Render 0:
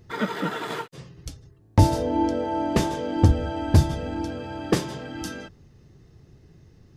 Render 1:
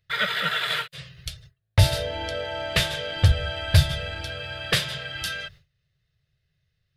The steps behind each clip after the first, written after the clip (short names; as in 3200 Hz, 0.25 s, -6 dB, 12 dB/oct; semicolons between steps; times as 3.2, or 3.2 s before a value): gate with hold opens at -40 dBFS; EQ curve 150 Hz 0 dB, 270 Hz -25 dB, 610 Hz +2 dB, 870 Hz -10 dB, 1500 Hz +8 dB, 3800 Hz +14 dB, 6200 Hz 0 dB, 10000 Hz +7 dB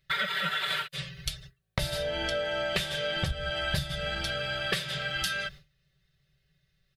comb 5.2 ms, depth 89%; compressor 12:1, threshold -28 dBFS, peak gain reduction 16 dB; gain +1.5 dB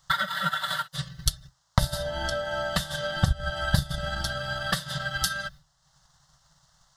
band noise 490–6600 Hz -67 dBFS; fixed phaser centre 1000 Hz, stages 4; transient shaper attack +6 dB, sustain -6 dB; gain +5.5 dB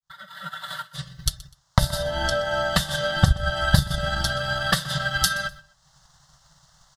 opening faded in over 2.26 s; feedback echo 0.125 s, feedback 27%, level -20.5 dB; gain +5.5 dB